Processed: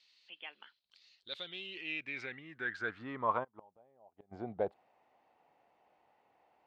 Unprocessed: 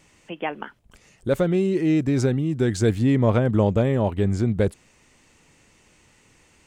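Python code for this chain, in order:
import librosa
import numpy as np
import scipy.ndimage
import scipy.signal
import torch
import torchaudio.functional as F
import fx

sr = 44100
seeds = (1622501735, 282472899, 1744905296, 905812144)

y = fx.filter_sweep_bandpass(x, sr, from_hz=4200.0, to_hz=740.0, start_s=1.18, end_s=3.89, q=5.5)
y = fx.gate_flip(y, sr, shuts_db=-31.0, range_db=-32, at=(3.43, 4.31), fade=0.02)
y = fx.high_shelf_res(y, sr, hz=5800.0, db=-10.0, q=1.5)
y = y * librosa.db_to_amplitude(2.5)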